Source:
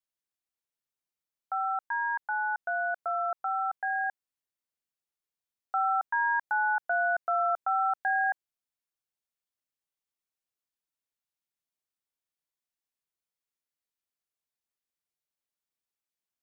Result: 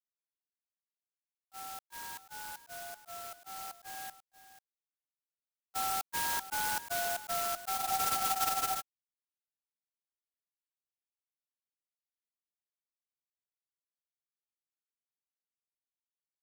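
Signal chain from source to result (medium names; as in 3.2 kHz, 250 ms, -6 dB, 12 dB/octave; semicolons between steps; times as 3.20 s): gate -28 dBFS, range -30 dB; on a send: delay 489 ms -14 dB; on the sum: spectral freeze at 7.81 s, 0.98 s; sampling jitter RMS 0.11 ms; trim -6.5 dB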